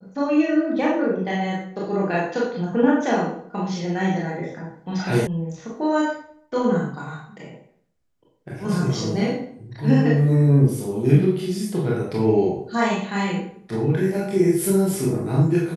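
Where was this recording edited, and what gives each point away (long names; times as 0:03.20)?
0:05.27: cut off before it has died away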